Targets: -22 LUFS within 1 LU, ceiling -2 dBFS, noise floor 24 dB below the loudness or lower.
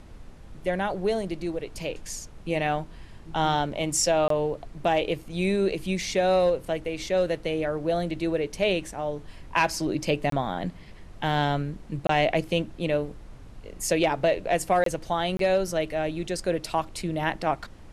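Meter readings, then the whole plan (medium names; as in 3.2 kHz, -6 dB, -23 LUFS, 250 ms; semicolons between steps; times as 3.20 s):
dropouts 5; longest dropout 23 ms; noise floor -46 dBFS; noise floor target -51 dBFS; loudness -27.0 LUFS; peak level -8.5 dBFS; loudness target -22.0 LUFS
-> interpolate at 4.28/10.30/12.07/14.84/15.37 s, 23 ms; noise print and reduce 6 dB; trim +5 dB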